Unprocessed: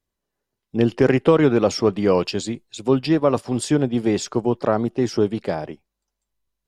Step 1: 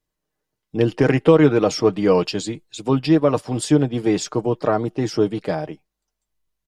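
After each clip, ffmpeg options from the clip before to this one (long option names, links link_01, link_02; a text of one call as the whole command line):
ffmpeg -i in.wav -af "aecho=1:1:6.5:0.49" out.wav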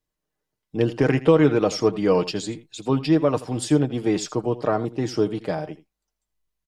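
ffmpeg -i in.wav -af "aecho=1:1:82:0.15,volume=-3dB" out.wav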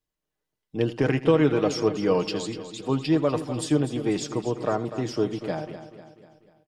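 ffmpeg -i in.wav -af "equalizer=frequency=3100:width=1.8:gain=2.5,aecho=1:1:246|492|738|984|1230:0.251|0.126|0.0628|0.0314|0.0157,volume=-3.5dB" out.wav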